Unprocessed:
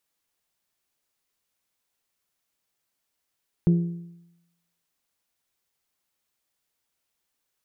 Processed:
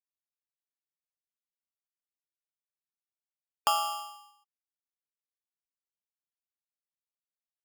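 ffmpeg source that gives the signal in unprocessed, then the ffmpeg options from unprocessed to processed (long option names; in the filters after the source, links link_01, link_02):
-f lavfi -i "aevalsrc='0.211*pow(10,-3*t/0.88)*sin(2*PI*171*t)+0.0631*pow(10,-3*t/0.715)*sin(2*PI*342*t)+0.0188*pow(10,-3*t/0.677)*sin(2*PI*410.4*t)+0.00562*pow(10,-3*t/0.633)*sin(2*PI*513*t)+0.00168*pow(10,-3*t/0.581)*sin(2*PI*684*t)':duration=1.55:sample_rate=44100"
-af "acompressor=threshold=-28dB:ratio=2,afftfilt=real='re*gte(hypot(re,im),0.00501)':imag='im*gte(hypot(re,im),0.00501)':win_size=1024:overlap=0.75,aeval=exprs='val(0)*sgn(sin(2*PI*1000*n/s))':channel_layout=same"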